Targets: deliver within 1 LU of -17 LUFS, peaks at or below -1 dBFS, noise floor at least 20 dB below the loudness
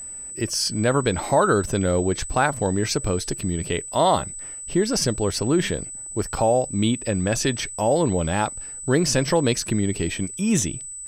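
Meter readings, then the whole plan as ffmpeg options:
steady tone 8 kHz; tone level -33 dBFS; loudness -22.5 LUFS; peak level -7.0 dBFS; loudness target -17.0 LUFS
-> -af "bandreject=f=8000:w=30"
-af "volume=1.88"

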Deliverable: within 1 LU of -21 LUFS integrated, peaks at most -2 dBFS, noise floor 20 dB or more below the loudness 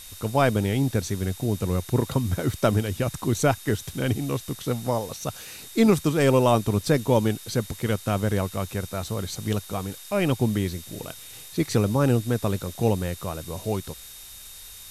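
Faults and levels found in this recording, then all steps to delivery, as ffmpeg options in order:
steady tone 3.7 kHz; tone level -49 dBFS; noise floor -43 dBFS; noise floor target -45 dBFS; loudness -25.0 LUFS; peak level -7.0 dBFS; loudness target -21.0 LUFS
-> -af "bandreject=f=3700:w=30"
-af "afftdn=nr=6:nf=-43"
-af "volume=1.58"

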